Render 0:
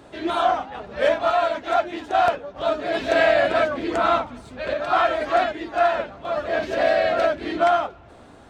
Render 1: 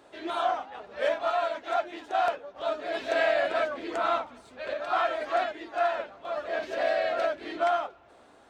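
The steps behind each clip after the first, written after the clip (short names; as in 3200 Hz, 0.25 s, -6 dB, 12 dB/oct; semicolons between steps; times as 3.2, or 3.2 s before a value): tone controls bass -13 dB, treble 0 dB; gain -7 dB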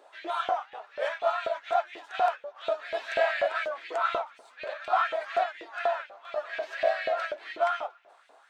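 LFO high-pass saw up 4.1 Hz 450–2600 Hz; gain -3.5 dB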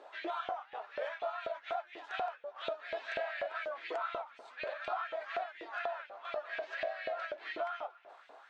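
compressor 4:1, threshold -39 dBFS, peak gain reduction 16 dB; air absorption 110 m; gain +2.5 dB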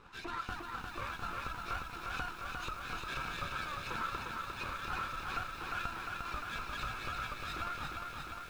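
minimum comb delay 0.78 ms; lo-fi delay 0.352 s, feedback 80%, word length 10-bit, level -3.5 dB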